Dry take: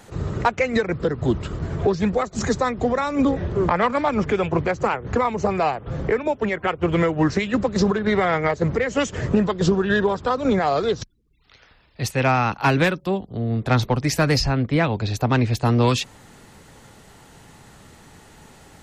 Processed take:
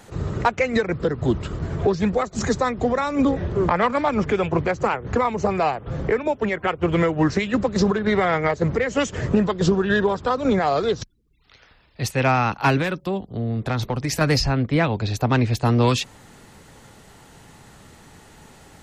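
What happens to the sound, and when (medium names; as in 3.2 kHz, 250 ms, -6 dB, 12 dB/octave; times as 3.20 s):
12.77–14.21 s: compression, threshold -19 dBFS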